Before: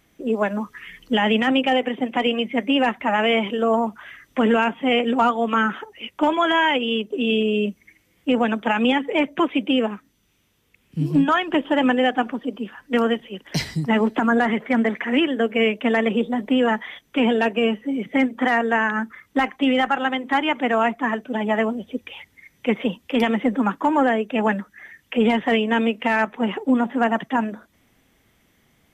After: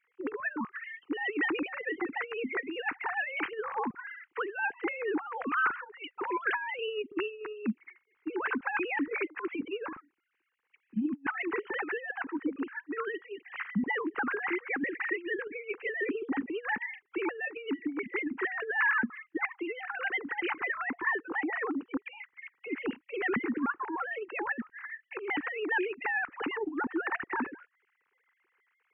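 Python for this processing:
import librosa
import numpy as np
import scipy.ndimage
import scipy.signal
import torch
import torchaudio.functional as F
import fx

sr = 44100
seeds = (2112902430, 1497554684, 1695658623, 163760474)

y = fx.sine_speech(x, sr)
y = fx.over_compress(y, sr, threshold_db=-22.0, ratio=-0.5)
y = fx.fixed_phaser(y, sr, hz=1500.0, stages=4)
y = fx.band_squash(y, sr, depth_pct=70, at=(26.05, 26.82))
y = y * librosa.db_to_amplitude(-5.0)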